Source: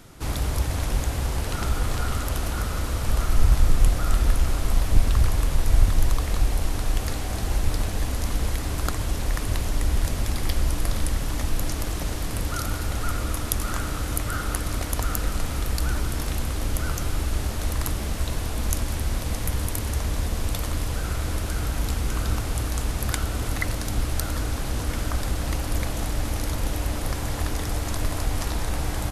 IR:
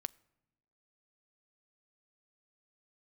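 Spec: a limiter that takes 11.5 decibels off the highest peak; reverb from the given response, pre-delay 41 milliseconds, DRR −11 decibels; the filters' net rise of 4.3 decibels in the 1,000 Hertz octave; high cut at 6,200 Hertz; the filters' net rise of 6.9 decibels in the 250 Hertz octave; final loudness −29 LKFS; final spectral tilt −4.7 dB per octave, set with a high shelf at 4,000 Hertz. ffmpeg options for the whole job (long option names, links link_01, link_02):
-filter_complex "[0:a]lowpass=6200,equalizer=frequency=250:width_type=o:gain=8.5,equalizer=frequency=1000:width_type=o:gain=4.5,highshelf=frequency=4000:gain=9,alimiter=limit=-11.5dB:level=0:latency=1,asplit=2[link_01][link_02];[1:a]atrim=start_sample=2205,adelay=41[link_03];[link_02][link_03]afir=irnorm=-1:irlink=0,volume=13dB[link_04];[link_01][link_04]amix=inputs=2:normalize=0,volume=-14dB"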